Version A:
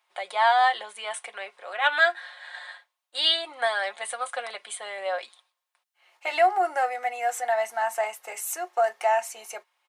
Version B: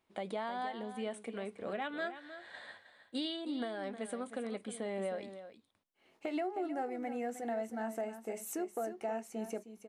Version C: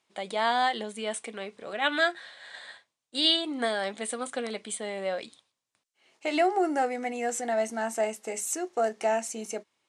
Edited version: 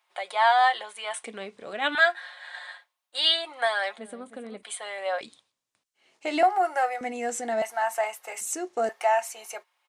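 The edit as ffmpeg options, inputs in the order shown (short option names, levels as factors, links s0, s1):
-filter_complex "[2:a]asplit=4[s0][s1][s2][s3];[0:a]asplit=6[s4][s5][s6][s7][s8][s9];[s4]atrim=end=1.232[s10];[s0]atrim=start=1.228:end=1.952[s11];[s5]atrim=start=1.948:end=3.982[s12];[1:a]atrim=start=3.978:end=4.632[s13];[s6]atrim=start=4.628:end=5.212[s14];[s1]atrim=start=5.208:end=6.432[s15];[s7]atrim=start=6.428:end=7.012[s16];[s2]atrim=start=7.008:end=7.622[s17];[s8]atrim=start=7.618:end=8.412[s18];[s3]atrim=start=8.408:end=8.892[s19];[s9]atrim=start=8.888[s20];[s10][s11]acrossfade=d=0.004:c1=hsin:c2=hsin[s21];[s21][s12]acrossfade=d=0.004:c1=hsin:c2=hsin[s22];[s22][s13]acrossfade=d=0.004:c1=hsin:c2=hsin[s23];[s23][s14]acrossfade=d=0.004:c1=hsin:c2=hsin[s24];[s24][s15]acrossfade=d=0.004:c1=hsin:c2=hsin[s25];[s25][s16]acrossfade=d=0.004:c1=hsin:c2=hsin[s26];[s26][s17]acrossfade=d=0.004:c1=hsin:c2=hsin[s27];[s27][s18]acrossfade=d=0.004:c1=hsin:c2=hsin[s28];[s28][s19]acrossfade=d=0.004:c1=hsin:c2=hsin[s29];[s29][s20]acrossfade=d=0.004:c1=hsin:c2=hsin"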